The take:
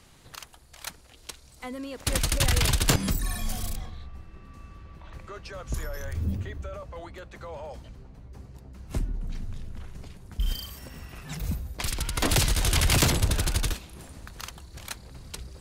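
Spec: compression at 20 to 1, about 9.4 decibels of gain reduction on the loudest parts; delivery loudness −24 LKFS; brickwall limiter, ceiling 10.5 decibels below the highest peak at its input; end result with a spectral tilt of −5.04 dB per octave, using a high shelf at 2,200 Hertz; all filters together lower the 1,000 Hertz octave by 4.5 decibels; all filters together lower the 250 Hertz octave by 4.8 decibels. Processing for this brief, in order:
parametric band 250 Hz −7 dB
parametric band 1,000 Hz −3.5 dB
high-shelf EQ 2,200 Hz −8.5 dB
downward compressor 20 to 1, threshold −29 dBFS
level +19 dB
brickwall limiter −11.5 dBFS

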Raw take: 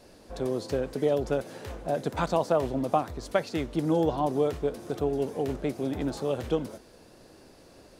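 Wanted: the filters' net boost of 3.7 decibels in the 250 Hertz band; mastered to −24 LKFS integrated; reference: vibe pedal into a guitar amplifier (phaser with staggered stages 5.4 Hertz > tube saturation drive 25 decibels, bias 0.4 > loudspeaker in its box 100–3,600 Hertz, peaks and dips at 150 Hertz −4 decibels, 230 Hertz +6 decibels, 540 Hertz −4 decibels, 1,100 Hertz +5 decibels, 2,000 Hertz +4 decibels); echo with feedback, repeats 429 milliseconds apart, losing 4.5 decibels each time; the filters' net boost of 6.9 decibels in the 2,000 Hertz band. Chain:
parametric band 250 Hz +3 dB
parametric band 2,000 Hz +6.5 dB
repeating echo 429 ms, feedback 60%, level −4.5 dB
phaser with staggered stages 5.4 Hz
tube saturation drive 25 dB, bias 0.4
loudspeaker in its box 100–3,600 Hz, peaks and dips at 150 Hz −4 dB, 230 Hz +6 dB, 540 Hz −4 dB, 1,100 Hz +5 dB, 2,000 Hz +4 dB
level +8.5 dB

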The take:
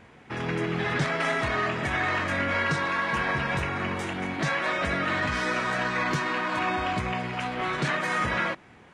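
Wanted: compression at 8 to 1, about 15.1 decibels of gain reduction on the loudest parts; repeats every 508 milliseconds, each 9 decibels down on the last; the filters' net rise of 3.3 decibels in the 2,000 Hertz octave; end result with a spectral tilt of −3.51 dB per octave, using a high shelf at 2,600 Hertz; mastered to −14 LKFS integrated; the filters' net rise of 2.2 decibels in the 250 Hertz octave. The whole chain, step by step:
parametric band 250 Hz +3 dB
parametric band 2,000 Hz +6 dB
high-shelf EQ 2,600 Hz −5 dB
downward compressor 8 to 1, threshold −37 dBFS
repeating echo 508 ms, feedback 35%, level −9 dB
level +24 dB

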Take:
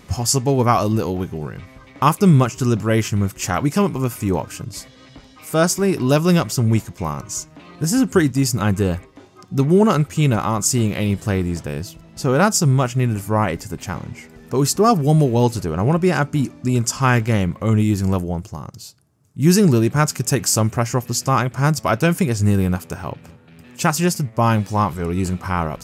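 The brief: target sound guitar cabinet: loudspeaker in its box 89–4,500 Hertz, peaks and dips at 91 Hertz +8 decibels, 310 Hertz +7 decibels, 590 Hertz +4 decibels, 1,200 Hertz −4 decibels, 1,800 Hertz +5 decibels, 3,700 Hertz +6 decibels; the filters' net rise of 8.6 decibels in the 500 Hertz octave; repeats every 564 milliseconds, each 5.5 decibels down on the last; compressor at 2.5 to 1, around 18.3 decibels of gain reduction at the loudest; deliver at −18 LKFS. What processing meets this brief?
parametric band 500 Hz +8 dB
downward compressor 2.5 to 1, threshold −35 dBFS
loudspeaker in its box 89–4,500 Hz, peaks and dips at 91 Hz +8 dB, 310 Hz +7 dB, 590 Hz +4 dB, 1,200 Hz −4 dB, 1,800 Hz +5 dB, 3,700 Hz +6 dB
repeating echo 564 ms, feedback 53%, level −5.5 dB
level +11 dB

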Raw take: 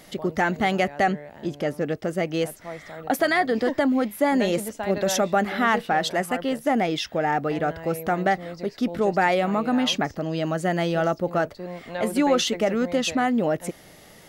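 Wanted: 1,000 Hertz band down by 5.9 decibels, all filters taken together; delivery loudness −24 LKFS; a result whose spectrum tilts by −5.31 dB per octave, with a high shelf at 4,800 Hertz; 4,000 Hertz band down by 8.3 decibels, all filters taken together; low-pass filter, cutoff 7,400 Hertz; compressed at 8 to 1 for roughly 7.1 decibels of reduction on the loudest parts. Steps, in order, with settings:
low-pass filter 7,400 Hz
parametric band 1,000 Hz −8.5 dB
parametric band 4,000 Hz −8.5 dB
high-shelf EQ 4,800 Hz −4 dB
downward compressor 8 to 1, threshold −26 dBFS
level +7.5 dB

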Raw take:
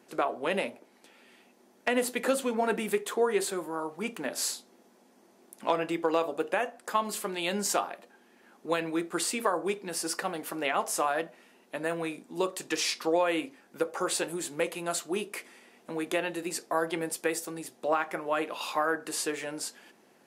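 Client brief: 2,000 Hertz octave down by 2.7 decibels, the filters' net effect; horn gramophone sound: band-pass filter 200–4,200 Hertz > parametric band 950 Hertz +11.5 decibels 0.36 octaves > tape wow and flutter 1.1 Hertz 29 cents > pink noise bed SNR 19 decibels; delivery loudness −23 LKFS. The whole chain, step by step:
band-pass filter 200–4,200 Hz
parametric band 950 Hz +11.5 dB 0.36 octaves
parametric band 2,000 Hz −4 dB
tape wow and flutter 1.1 Hz 29 cents
pink noise bed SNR 19 dB
level +7 dB

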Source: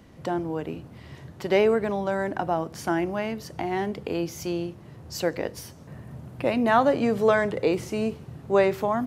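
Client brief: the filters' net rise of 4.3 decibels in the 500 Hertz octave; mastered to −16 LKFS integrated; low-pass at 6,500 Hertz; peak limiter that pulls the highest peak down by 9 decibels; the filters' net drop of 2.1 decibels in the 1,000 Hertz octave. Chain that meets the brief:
low-pass filter 6,500 Hz
parametric band 500 Hz +7 dB
parametric band 1,000 Hz −6.5 dB
level +10 dB
brickwall limiter −5 dBFS

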